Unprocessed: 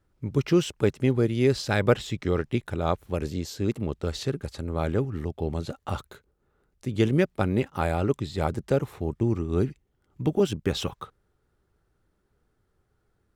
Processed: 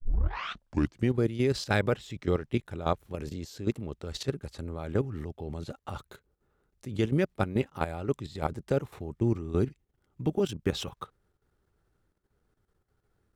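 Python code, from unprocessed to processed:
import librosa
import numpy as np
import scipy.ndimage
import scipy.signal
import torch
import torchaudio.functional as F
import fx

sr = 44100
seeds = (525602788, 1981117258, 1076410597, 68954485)

y = fx.tape_start_head(x, sr, length_s=1.14)
y = fx.level_steps(y, sr, step_db=12)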